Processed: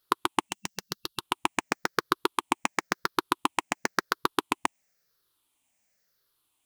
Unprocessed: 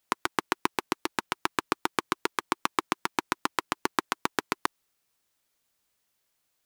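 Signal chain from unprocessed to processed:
rippled gain that drifts along the octave scale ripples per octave 0.6, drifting −0.96 Hz, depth 11 dB
gain on a spectral selection 0:00.49–0:01.20, 210–2,700 Hz −11 dB

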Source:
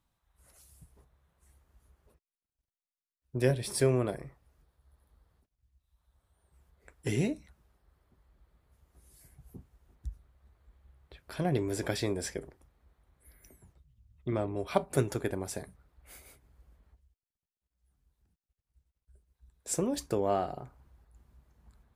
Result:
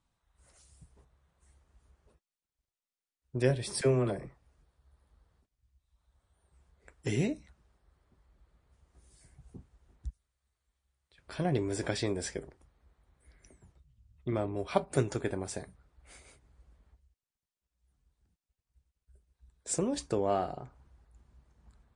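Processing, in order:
0:03.81–0:04.27: all-pass dispersion lows, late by 45 ms, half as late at 550 Hz
0:10.10–0:11.18: first-order pre-emphasis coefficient 0.9
MP3 40 kbit/s 22,050 Hz

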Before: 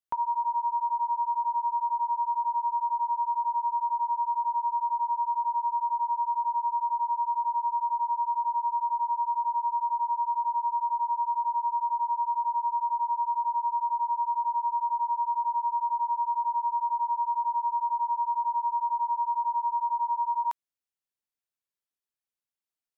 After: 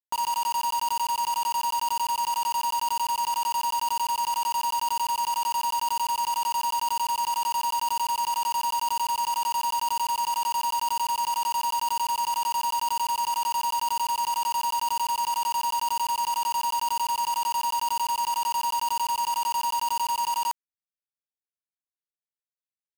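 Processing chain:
linear delta modulator 64 kbit/s, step −32.5 dBFS
bit reduction 5 bits

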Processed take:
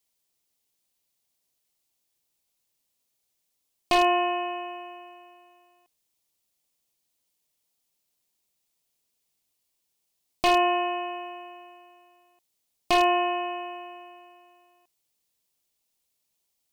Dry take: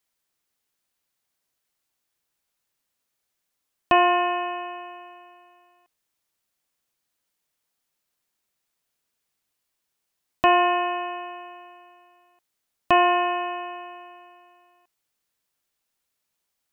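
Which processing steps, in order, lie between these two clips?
high-shelf EQ 2,700 Hz +3 dB
wave folding −11 dBFS
parametric band 1,500 Hz −9.5 dB 1 octave

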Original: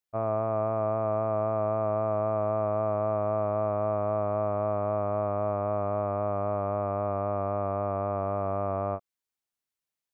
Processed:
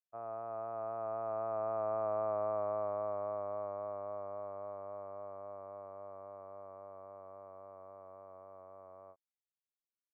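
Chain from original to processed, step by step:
source passing by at 0:02.23, 13 m/s, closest 12 metres
three-way crossover with the lows and the highs turned down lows −13 dB, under 390 Hz, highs −24 dB, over 2,200 Hz
level −5.5 dB

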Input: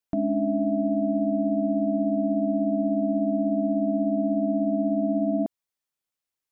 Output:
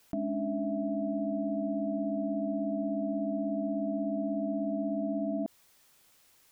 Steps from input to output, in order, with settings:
envelope flattener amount 50%
level −8.5 dB

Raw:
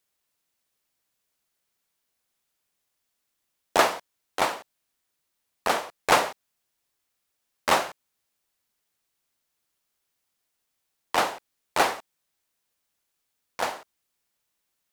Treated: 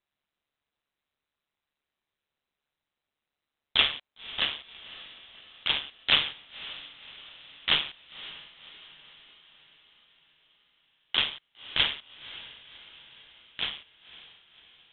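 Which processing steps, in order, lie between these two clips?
ring modulation 73 Hz
feedback delay with all-pass diffusion 550 ms, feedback 54%, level −16 dB
voice inversion scrambler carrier 4,000 Hz

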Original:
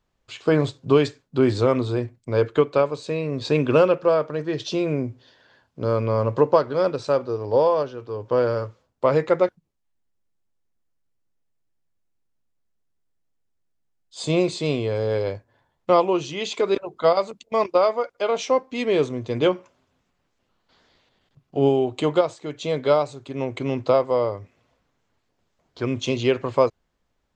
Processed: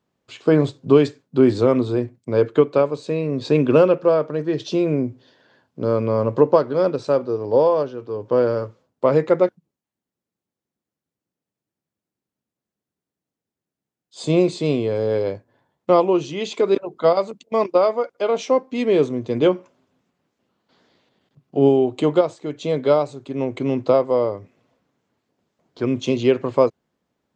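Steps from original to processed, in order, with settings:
high-pass filter 190 Hz 12 dB per octave
low-shelf EQ 420 Hz +11.5 dB
level −2 dB

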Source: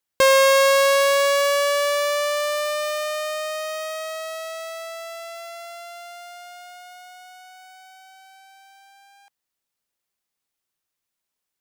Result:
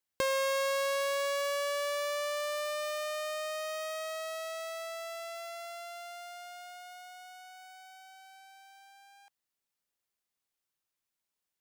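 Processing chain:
downward compressor 2 to 1, threshold −31 dBFS, peak gain reduction 10 dB
level −5.5 dB

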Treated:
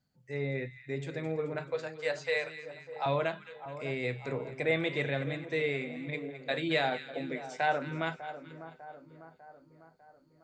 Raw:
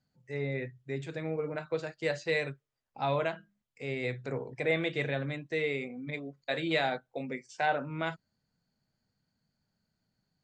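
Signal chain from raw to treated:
0:01.67–0:03.06: elliptic high-pass filter 480 Hz
echo with a time of its own for lows and highs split 1,400 Hz, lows 599 ms, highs 215 ms, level −12.5 dB

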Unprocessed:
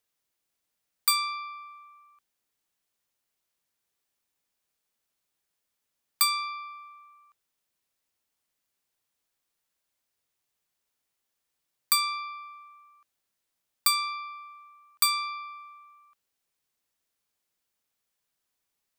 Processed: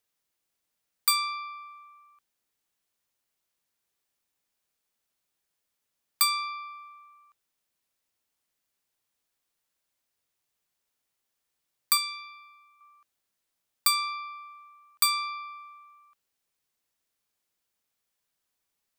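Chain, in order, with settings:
0:11.97–0:12.81: parametric band 900 Hz −12 dB 1.8 octaves

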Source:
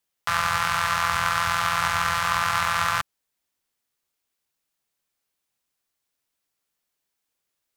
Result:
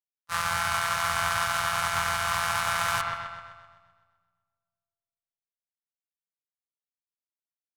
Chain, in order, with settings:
bass and treble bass 0 dB, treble +5 dB
noise gate −22 dBFS, range −46 dB
leveller curve on the samples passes 1
delay with a low-pass on its return 128 ms, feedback 52%, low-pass 3,000 Hz, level −4.5 dB
on a send at −21 dB: convolution reverb RT60 2.0 s, pre-delay 115 ms
on the sum: brickwall limiter −9 dBFS, peak gain reduction 4 dB
parametric band 10,000 Hz +4 dB 0.51 octaves
level −5 dB

